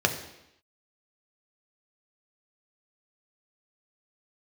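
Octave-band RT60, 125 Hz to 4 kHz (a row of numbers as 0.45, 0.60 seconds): 0.75, 0.85, 0.85, 0.85, 0.85, 0.85 seconds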